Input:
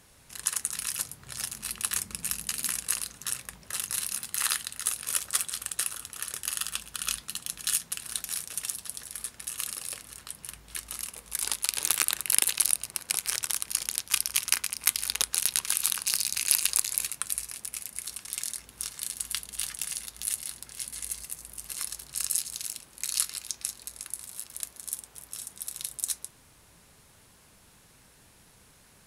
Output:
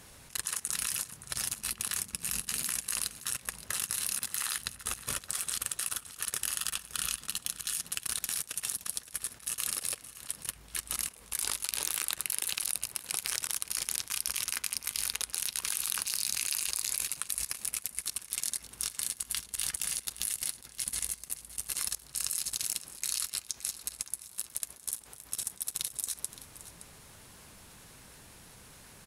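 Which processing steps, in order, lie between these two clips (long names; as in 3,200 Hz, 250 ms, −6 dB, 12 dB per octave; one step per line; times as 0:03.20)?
0:04.58–0:05.24: spectral tilt −2.5 dB per octave
output level in coarse steps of 20 dB
on a send: single-tap delay 569 ms −15 dB
on the sum: level +6.5 dB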